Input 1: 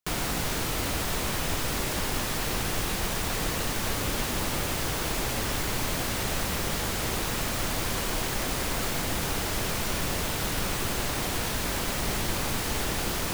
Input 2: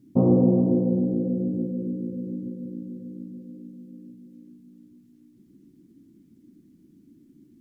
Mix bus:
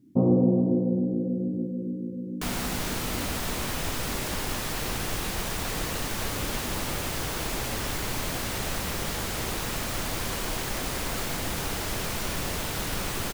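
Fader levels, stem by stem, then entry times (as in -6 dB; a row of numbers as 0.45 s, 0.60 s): -1.5 dB, -2.5 dB; 2.35 s, 0.00 s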